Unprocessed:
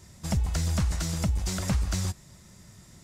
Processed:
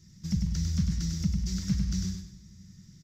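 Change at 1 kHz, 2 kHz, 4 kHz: below −15 dB, −11.0 dB, −3.5 dB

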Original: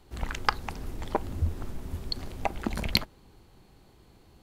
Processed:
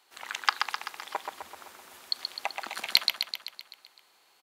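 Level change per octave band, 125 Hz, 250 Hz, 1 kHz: below −35 dB, −20.5 dB, −0.5 dB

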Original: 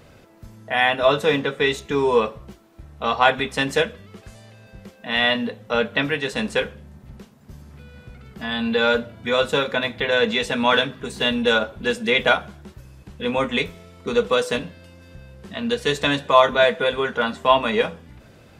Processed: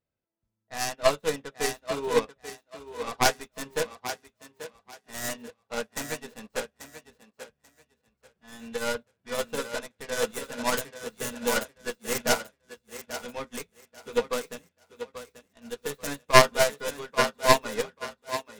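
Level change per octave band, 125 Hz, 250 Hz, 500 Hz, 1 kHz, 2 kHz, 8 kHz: −7.5, −11.5, −8.0, −6.5, −9.0, +8.0 decibels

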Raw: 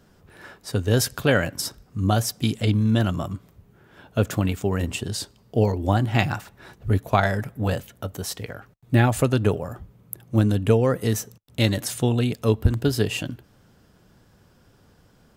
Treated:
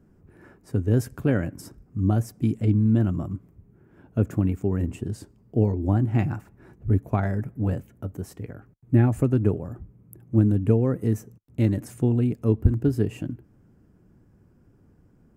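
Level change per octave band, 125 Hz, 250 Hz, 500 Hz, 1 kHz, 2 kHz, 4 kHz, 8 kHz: 0.0 dB, +0.5 dB, −4.5 dB, −9.5 dB, −12.0 dB, below −20 dB, below −15 dB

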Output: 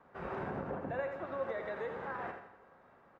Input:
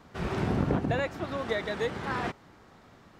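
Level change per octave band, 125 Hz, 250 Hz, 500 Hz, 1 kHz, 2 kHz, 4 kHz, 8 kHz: −16.0 dB, −13.5 dB, −6.0 dB, −6.5 dB, −8.5 dB, −20.5 dB, below −25 dB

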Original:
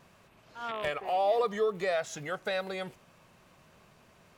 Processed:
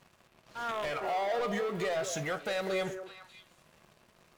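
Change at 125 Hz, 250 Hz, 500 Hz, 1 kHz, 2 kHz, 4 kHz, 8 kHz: +4.0, +3.5, −2.5, −2.5, 0.0, +0.5, +5.0 decibels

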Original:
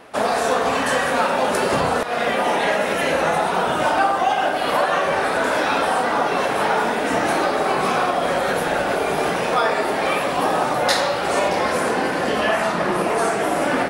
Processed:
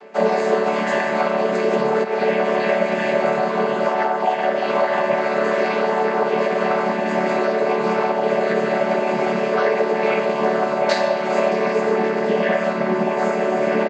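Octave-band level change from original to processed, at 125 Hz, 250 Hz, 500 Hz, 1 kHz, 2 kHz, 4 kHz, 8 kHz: +0.5 dB, +2.0 dB, +3.0 dB, −2.5 dB, −2.5 dB, −6.5 dB, below −10 dB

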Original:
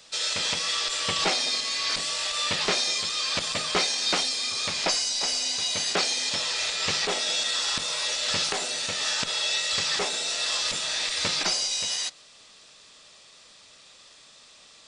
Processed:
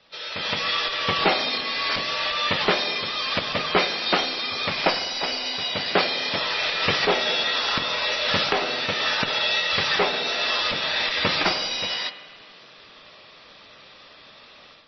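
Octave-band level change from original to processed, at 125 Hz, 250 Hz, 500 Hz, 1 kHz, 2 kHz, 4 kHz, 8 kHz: +7.0, +8.0, +8.0, +7.5, +6.5, +1.5, −13.5 decibels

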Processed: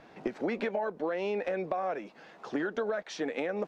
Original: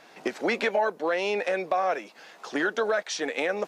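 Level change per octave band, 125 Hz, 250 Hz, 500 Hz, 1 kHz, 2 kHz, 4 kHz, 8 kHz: can't be measured, −1.5 dB, −5.0 dB, −8.0 dB, −10.0 dB, −11.5 dB, below −10 dB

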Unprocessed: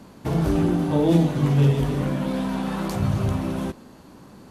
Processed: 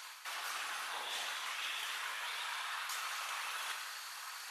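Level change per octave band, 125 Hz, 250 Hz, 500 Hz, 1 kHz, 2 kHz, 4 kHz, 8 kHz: below −40 dB, below −40 dB, −30.5 dB, −9.0 dB, 0.0 dB, +0.5 dB, 0.0 dB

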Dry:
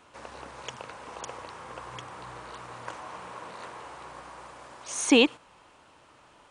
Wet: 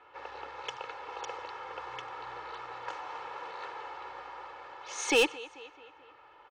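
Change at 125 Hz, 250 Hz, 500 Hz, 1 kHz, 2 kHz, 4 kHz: −12.0, −13.5, −3.0, +1.0, −1.5, −4.5 decibels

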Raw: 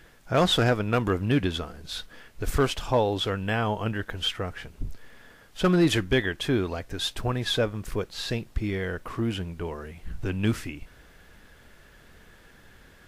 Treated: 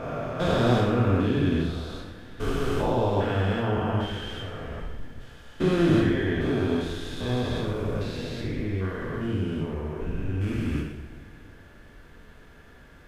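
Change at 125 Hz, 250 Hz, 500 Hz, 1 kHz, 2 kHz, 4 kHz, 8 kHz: +2.0, +2.0, +0.5, −0.5, −3.0, −7.5, −8.5 decibels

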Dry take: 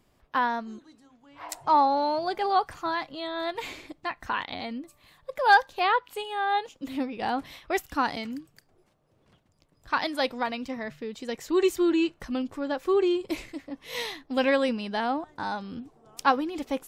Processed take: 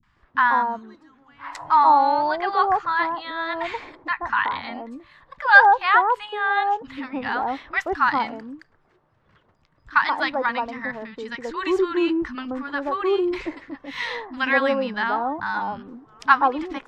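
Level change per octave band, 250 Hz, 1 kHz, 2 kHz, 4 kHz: +1.0, +6.5, +10.0, +1.0 decibels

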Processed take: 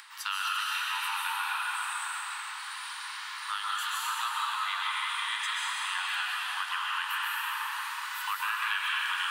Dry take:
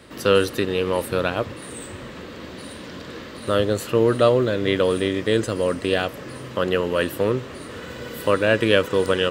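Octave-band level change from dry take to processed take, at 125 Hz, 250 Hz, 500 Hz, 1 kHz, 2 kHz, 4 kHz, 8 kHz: below −40 dB, below −40 dB, below −40 dB, −1.5 dB, −2.0 dB, −2.5 dB, −0.5 dB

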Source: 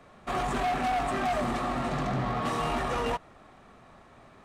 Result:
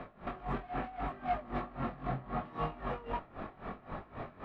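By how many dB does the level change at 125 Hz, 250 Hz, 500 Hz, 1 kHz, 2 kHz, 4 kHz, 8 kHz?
−7.0 dB, −8.0 dB, −9.0 dB, −9.0 dB, −11.5 dB, −17.0 dB, below −30 dB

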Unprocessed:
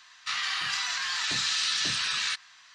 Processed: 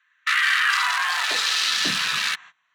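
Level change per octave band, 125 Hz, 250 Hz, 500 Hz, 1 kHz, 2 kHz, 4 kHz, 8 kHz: +1.5, +8.0, +10.5, +11.0, +10.5, +4.5, +3.0 decibels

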